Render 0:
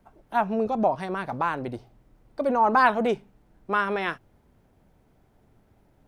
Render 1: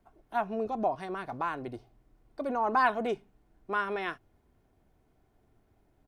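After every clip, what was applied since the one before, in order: comb 2.8 ms, depth 31%; trim -7 dB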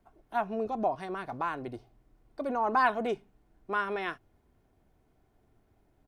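no audible change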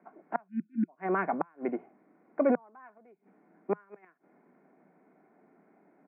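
inverted gate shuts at -24 dBFS, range -36 dB; Chebyshev band-pass 170–2300 Hz, order 5; spectral selection erased 0.48–0.89 s, 360–1400 Hz; trim +9 dB

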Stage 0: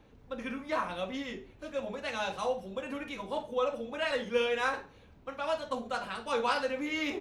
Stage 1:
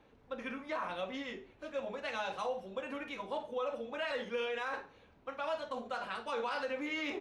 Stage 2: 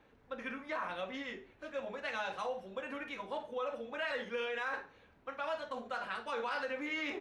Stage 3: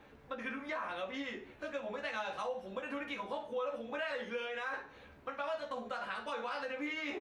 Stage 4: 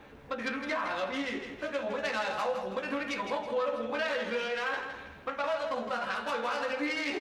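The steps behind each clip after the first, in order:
low-pass 3.3 kHz 6 dB/octave; bass shelf 240 Hz -11 dB; peak limiter -27.5 dBFS, peak gain reduction 10.5 dB
peaking EQ 1.7 kHz +5 dB 0.78 oct; trim -2 dB
compression 2.5:1, threshold -47 dBFS, peak gain reduction 9.5 dB; doubling 14 ms -5 dB; trim +6 dB
self-modulated delay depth 0.092 ms; feedback delay 162 ms, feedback 38%, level -8 dB; trim +6.5 dB

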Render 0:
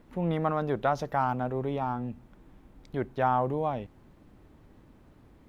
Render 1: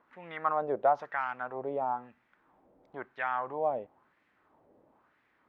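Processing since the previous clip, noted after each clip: wah-wah 1 Hz 550–2000 Hz, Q 2.3; dynamic bell 2 kHz, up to +4 dB, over -51 dBFS, Q 0.94; trim +3 dB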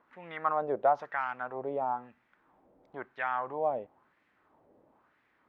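no audible change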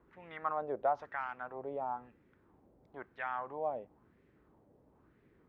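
band noise 39–430 Hz -62 dBFS; trim -6 dB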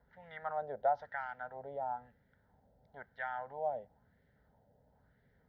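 static phaser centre 1.7 kHz, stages 8; trim +1 dB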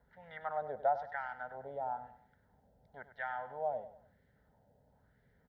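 feedback delay 99 ms, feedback 35%, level -12.5 dB

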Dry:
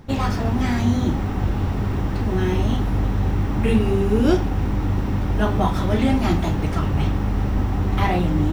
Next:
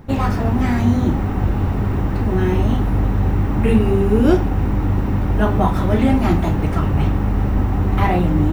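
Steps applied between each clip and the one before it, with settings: peaking EQ 5.1 kHz -7.5 dB 1.6 oct; band-stop 3.3 kHz, Q 23; trim +3.5 dB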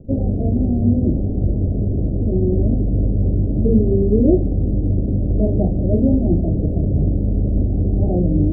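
steep low-pass 650 Hz 72 dB/octave

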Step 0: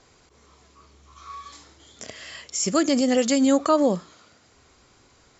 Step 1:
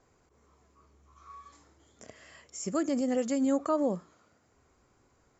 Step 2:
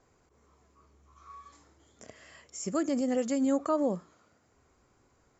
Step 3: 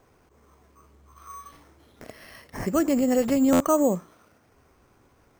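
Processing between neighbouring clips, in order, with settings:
peaking EQ 3.9 kHz -12.5 dB 1.6 oct; trim -8 dB
no audible change
careless resampling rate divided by 6×, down none, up hold; buffer glitch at 3.52 s, samples 512, times 6; trim +7 dB

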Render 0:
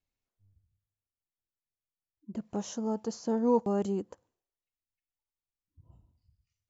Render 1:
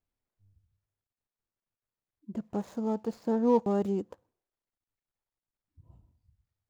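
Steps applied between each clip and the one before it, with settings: median filter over 15 samples; trim +1.5 dB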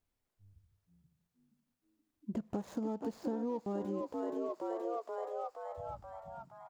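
frequency-shifting echo 475 ms, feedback 59%, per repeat +73 Hz, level -7 dB; compression 20:1, threshold -36 dBFS, peak gain reduction 18.5 dB; trim +3 dB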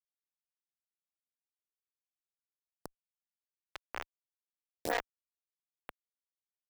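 LFO band-pass sine 0.96 Hz 590–2800 Hz; bit crusher 6-bit; lamp-driven phase shifter 4.1 Hz; trim +9.5 dB

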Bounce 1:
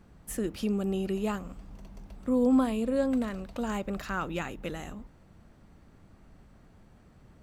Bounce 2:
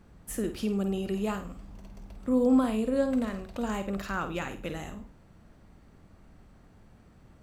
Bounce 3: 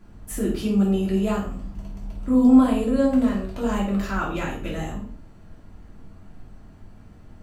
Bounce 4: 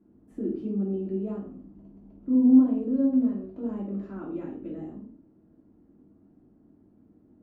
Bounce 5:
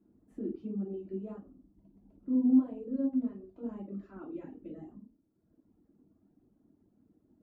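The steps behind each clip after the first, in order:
flutter echo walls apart 8.7 m, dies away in 0.33 s
simulated room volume 290 m³, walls furnished, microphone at 3 m
band-pass filter 300 Hz, Q 3.1
reverb removal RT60 1.1 s; trim -6 dB

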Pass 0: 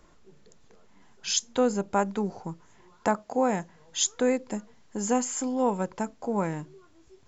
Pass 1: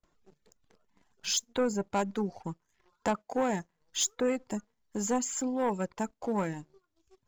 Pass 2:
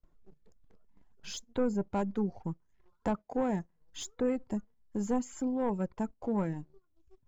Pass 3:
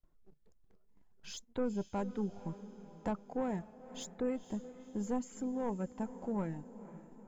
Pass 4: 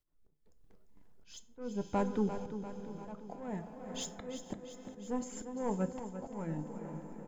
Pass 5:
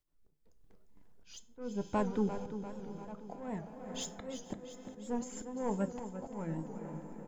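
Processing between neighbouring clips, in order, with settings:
gate with hold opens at -50 dBFS; waveshaping leveller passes 2; reverb removal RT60 0.71 s; trim -8.5 dB
tilt EQ -3 dB/octave; trim -5.5 dB
echo that smears into a reverb 488 ms, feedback 51%, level -14.5 dB; trim -5 dB
slow attack 386 ms; feedback delay 346 ms, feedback 56%, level -10 dB; FDN reverb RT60 0.55 s, high-frequency decay 0.7×, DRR 10 dB; trim +5 dB
warped record 78 rpm, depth 100 cents

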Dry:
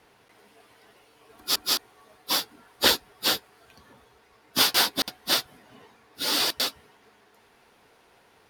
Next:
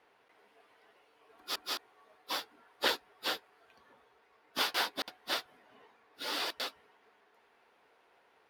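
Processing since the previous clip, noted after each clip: tone controls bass -14 dB, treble -11 dB; trim -6.5 dB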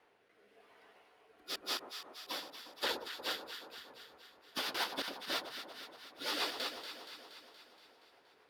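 peak limiter -25 dBFS, peak gain reduction 10 dB; rotary cabinet horn 0.9 Hz, later 7.5 Hz, at 2.60 s; echo whose repeats swap between lows and highs 118 ms, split 1.1 kHz, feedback 79%, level -7 dB; trim +2 dB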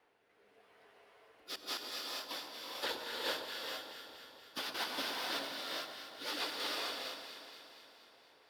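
gated-style reverb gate 480 ms rising, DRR -1 dB; trim -3 dB

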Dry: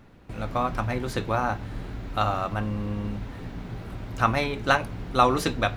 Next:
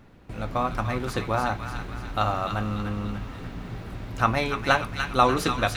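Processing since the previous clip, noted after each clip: feedback echo behind a high-pass 293 ms, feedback 52%, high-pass 1.4 kHz, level -4.5 dB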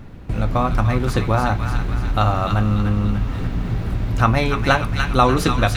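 bass shelf 190 Hz +10 dB; in parallel at +2 dB: compression, threshold -27 dBFS, peak gain reduction 14 dB; on the sum: trim +1 dB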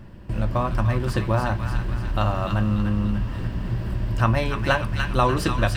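rippled EQ curve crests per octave 1.3, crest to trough 7 dB; trim -5 dB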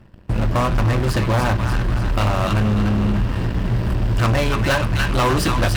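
overload inside the chain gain 21 dB; Chebyshev shaper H 3 -31 dB, 7 -19 dB, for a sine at -20.5 dBFS; trim +7.5 dB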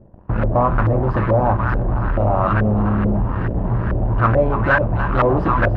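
LFO low-pass saw up 2.3 Hz 520–1700 Hz

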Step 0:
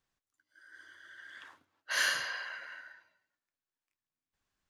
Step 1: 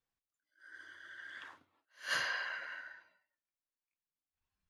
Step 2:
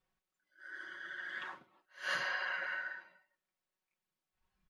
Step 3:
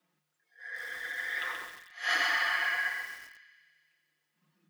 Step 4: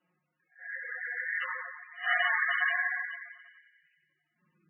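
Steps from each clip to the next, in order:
spectral noise reduction 10 dB; treble shelf 5.5 kHz -6.5 dB; attacks held to a fixed rise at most 200 dB/s; trim +2 dB
treble shelf 4.1 kHz -11.5 dB; comb 5.4 ms, depth 74%; compression 4:1, threshold -41 dBFS, peak gain reduction 9 dB; trim +7 dB
thinning echo 90 ms, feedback 78%, high-pass 750 Hz, level -11 dB; frequency shift +150 Hz; bit-crushed delay 129 ms, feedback 35%, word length 9-bit, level -4 dB; trim +7 dB
simulated room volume 1900 m³, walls mixed, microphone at 0.95 m; MP3 8 kbps 24 kHz

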